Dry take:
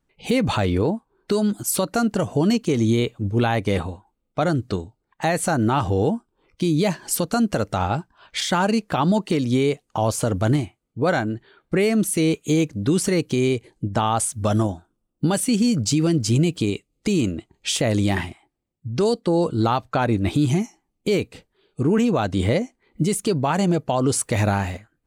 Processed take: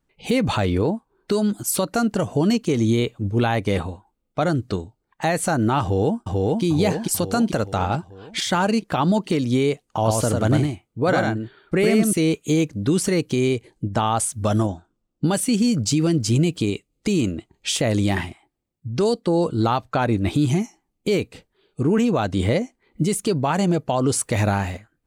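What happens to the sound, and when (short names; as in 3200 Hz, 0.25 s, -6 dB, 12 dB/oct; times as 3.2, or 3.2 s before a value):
5.82–6.63 echo throw 0.44 s, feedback 55%, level -1 dB
9.87–12.13 echo 0.1 s -3 dB
14.66–15.25 steep low-pass 8200 Hz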